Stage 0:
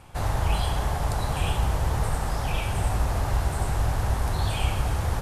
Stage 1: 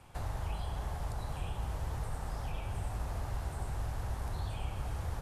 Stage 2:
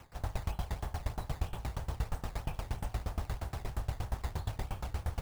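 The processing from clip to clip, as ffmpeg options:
-filter_complex "[0:a]acrossover=split=110|1400[s0][s1][s2];[s0]acompressor=threshold=0.0447:ratio=4[s3];[s1]acompressor=threshold=0.0158:ratio=4[s4];[s2]acompressor=threshold=0.00501:ratio=4[s5];[s3][s4][s5]amix=inputs=3:normalize=0,volume=0.422"
-af "acrusher=samples=9:mix=1:aa=0.000001:lfo=1:lforange=14.4:lforate=3.1,aeval=exprs='val(0)*pow(10,-23*if(lt(mod(8.5*n/s,1),2*abs(8.5)/1000),1-mod(8.5*n/s,1)/(2*abs(8.5)/1000),(mod(8.5*n/s,1)-2*abs(8.5)/1000)/(1-2*abs(8.5)/1000))/20)':c=same,volume=2.24"

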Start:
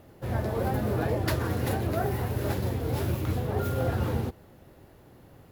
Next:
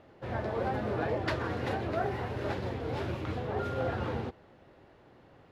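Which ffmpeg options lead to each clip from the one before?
-af "lowpass=3600,lowshelf=f=260:g=-10"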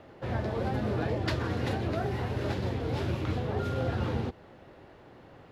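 -filter_complex "[0:a]acrossover=split=300|3000[s0][s1][s2];[s1]acompressor=threshold=0.00562:ratio=2[s3];[s0][s3][s2]amix=inputs=3:normalize=0,volume=1.88"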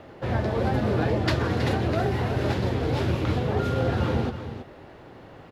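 -af "aecho=1:1:323:0.299,volume=2"

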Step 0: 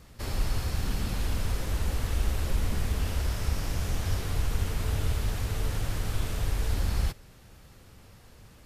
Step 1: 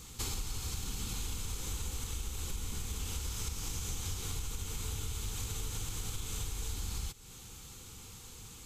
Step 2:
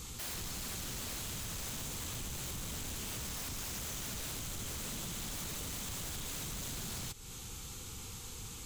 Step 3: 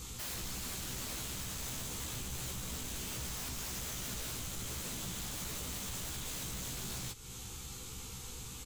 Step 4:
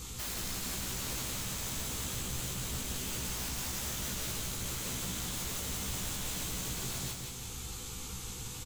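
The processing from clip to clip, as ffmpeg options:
-af "superequalizer=8b=0.251:11b=0.501:13b=1.41:15b=2.24,acompressor=threshold=0.0158:ratio=5,highshelf=f=2900:g=9.5"
-af "aeval=exprs='0.01*(abs(mod(val(0)/0.01+3,4)-2)-1)':c=same,volume=1.58"
-filter_complex "[0:a]asplit=2[s0][s1];[s1]adelay=16,volume=0.562[s2];[s0][s2]amix=inputs=2:normalize=0,volume=0.891"
-af "aecho=1:1:173|346|519|692|865:0.631|0.265|0.111|0.0467|0.0196,volume=1.26"

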